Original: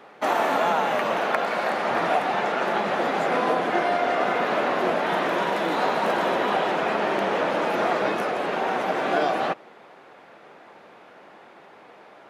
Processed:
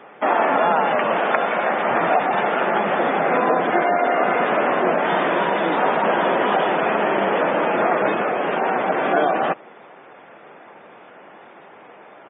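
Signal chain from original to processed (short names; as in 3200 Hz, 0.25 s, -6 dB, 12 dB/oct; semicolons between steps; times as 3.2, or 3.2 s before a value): downsampling 8000 Hz; spectral gate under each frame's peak -25 dB strong; gain +4.5 dB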